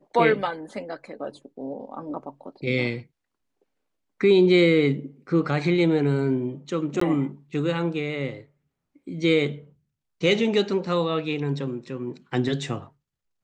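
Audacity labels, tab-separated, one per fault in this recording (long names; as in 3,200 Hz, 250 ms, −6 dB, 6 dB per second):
7.000000	7.010000	drop-out 14 ms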